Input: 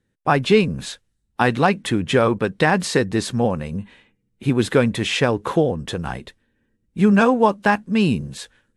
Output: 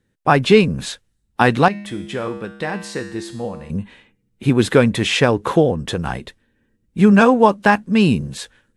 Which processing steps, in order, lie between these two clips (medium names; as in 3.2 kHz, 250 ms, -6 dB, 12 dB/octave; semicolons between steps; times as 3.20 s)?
1.68–3.70 s: feedback comb 68 Hz, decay 0.88 s, harmonics odd, mix 80%; trim +3.5 dB